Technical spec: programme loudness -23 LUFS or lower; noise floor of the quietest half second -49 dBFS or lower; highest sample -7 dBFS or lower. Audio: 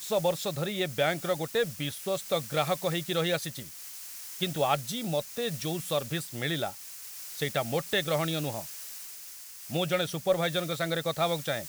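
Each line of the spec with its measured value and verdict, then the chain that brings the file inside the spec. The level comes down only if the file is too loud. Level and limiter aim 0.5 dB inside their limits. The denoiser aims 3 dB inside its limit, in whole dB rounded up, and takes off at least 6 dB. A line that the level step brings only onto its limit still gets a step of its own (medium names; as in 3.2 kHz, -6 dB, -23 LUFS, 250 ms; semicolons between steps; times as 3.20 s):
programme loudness -30.5 LUFS: pass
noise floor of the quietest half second -45 dBFS: fail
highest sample -12.0 dBFS: pass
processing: noise reduction 7 dB, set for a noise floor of -45 dBFS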